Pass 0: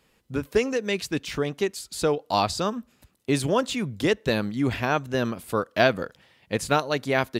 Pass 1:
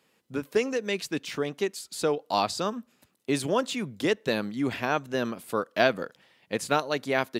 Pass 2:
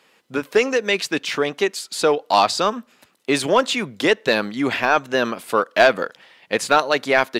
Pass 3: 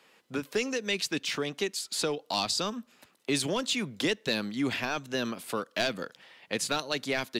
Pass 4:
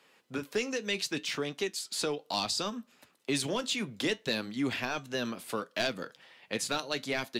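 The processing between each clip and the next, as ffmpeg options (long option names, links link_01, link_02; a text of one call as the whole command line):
ffmpeg -i in.wav -af "highpass=170,volume=-2.5dB" out.wav
ffmpeg -i in.wav -filter_complex "[0:a]asplit=2[link_01][link_02];[link_02]highpass=frequency=720:poles=1,volume=14dB,asoftclip=type=tanh:threshold=-5dB[link_03];[link_01][link_03]amix=inputs=2:normalize=0,lowpass=frequency=4100:poles=1,volume=-6dB,volume=4.5dB" out.wav
ffmpeg -i in.wav -filter_complex "[0:a]acrossover=split=270|3000[link_01][link_02][link_03];[link_02]acompressor=threshold=-34dB:ratio=2.5[link_04];[link_01][link_04][link_03]amix=inputs=3:normalize=0,volume=-4dB" out.wav
ffmpeg -i in.wav -af "flanger=delay=6.8:depth=3.2:regen=-70:speed=0.66:shape=triangular,volume=2dB" out.wav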